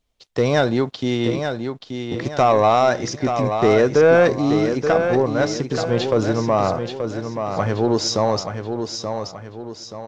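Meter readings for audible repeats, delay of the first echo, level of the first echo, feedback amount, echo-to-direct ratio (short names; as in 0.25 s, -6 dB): 4, 0.879 s, -7.0 dB, 42%, -6.0 dB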